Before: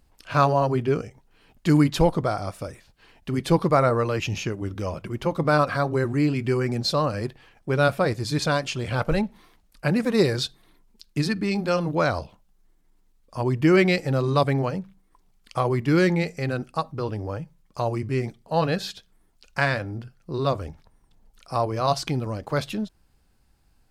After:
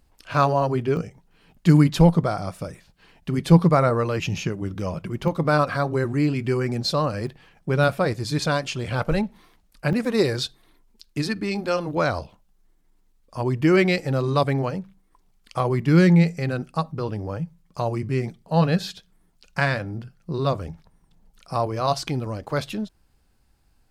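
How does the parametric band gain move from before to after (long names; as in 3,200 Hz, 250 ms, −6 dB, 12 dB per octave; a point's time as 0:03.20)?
parametric band 170 Hz 0.34 octaves
−1 dB
from 0:00.97 +10.5 dB
from 0:05.28 +3 dB
from 0:07.27 +11 dB
from 0:07.84 +2 dB
from 0:09.93 −7 dB
from 0:11.97 0 dB
from 0:15.60 +10 dB
from 0:21.67 −1.5 dB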